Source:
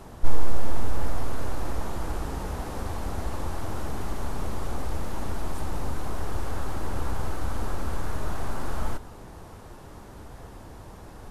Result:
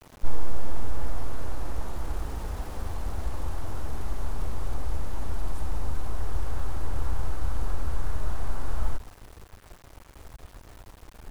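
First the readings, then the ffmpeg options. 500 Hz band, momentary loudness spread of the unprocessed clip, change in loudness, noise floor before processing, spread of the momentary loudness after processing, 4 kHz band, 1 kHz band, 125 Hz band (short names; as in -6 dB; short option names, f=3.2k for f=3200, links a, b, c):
-5.5 dB, 12 LU, -1.5 dB, -45 dBFS, 16 LU, n/a, -5.0 dB, -0.5 dB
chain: -af "aeval=exprs='val(0)*gte(abs(val(0)),0.01)':c=same,asubboost=boost=2.5:cutoff=100,volume=-5dB"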